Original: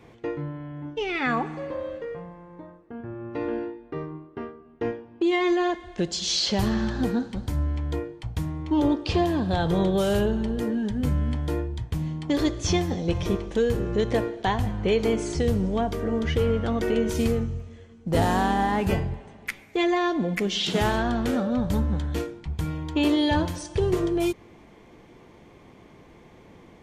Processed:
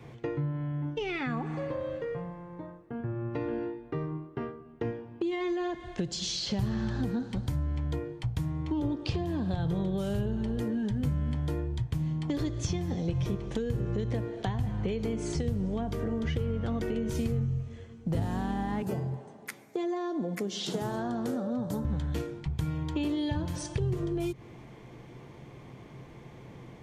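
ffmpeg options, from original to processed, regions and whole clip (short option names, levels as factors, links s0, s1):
-filter_complex "[0:a]asettb=1/sr,asplit=3[s0][s1][s2];[s0]atrim=end=18.824[s3];[s1]atrim=start=18.82:end=21.85,asetpts=PTS-STARTPTS,afade=t=in:d=0.004:c=qsin,afade=t=out:st=3.026:d=0.004:c=qsin,highpass=240,equalizer=f=2500:t=o:w=1.4:g=-12.5[s4];[s2]atrim=start=21.846[s5];[s3][s4]acrossfade=d=0.004:c1=hsin:c2=qsin[s6];[s6][s5]acrossfade=d=0.004:c1=qsin:c2=hsin,acrossover=split=290[s7][s8];[s8]acompressor=threshold=0.0316:ratio=6[s9];[s7][s9]amix=inputs=2:normalize=0,equalizer=f=130:t=o:w=0.34:g=14,acompressor=threshold=0.0316:ratio=2.5"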